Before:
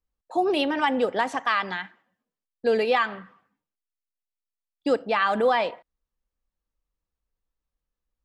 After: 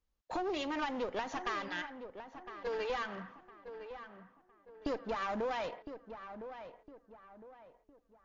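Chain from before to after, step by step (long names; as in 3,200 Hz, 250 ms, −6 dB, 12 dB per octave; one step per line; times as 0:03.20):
0:05.10–0:05.51: parametric band 3,100 Hz −10.5 dB 2.2 octaves
downward compressor 6 to 1, threshold −32 dBFS, peak gain reduction 14 dB
0:01.68–0:02.90: Chebyshev high-pass with heavy ripple 420 Hz, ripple 3 dB
asymmetric clip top −39.5 dBFS
feedback echo with a low-pass in the loop 1,009 ms, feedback 38%, low-pass 1,900 Hz, level −10 dB
level +1.5 dB
MP3 48 kbit/s 16,000 Hz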